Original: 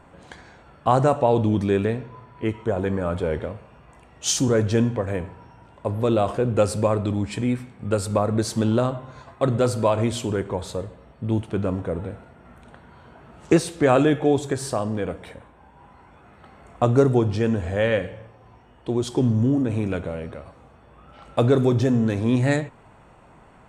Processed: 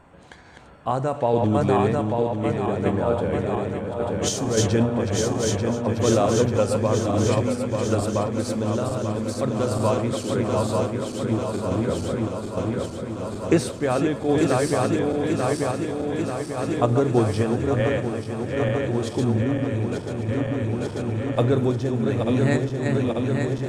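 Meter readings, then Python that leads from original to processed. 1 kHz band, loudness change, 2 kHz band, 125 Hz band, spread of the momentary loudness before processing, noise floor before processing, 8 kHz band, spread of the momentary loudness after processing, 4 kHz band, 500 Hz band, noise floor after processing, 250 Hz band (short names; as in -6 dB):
+0.5 dB, -0.5 dB, +0.5 dB, +0.5 dB, 13 LU, -51 dBFS, +1.0 dB, 7 LU, +1.0 dB, +1.0 dB, -34 dBFS, +0.5 dB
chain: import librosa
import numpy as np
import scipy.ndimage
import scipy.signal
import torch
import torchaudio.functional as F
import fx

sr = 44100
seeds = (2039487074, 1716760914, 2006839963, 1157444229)

y = fx.reverse_delay_fb(x, sr, ms=445, feedback_pct=84, wet_db=-4)
y = fx.tremolo_random(y, sr, seeds[0], hz=3.5, depth_pct=55)
y = fx.echo_feedback(y, sr, ms=1147, feedback_pct=51, wet_db=-17)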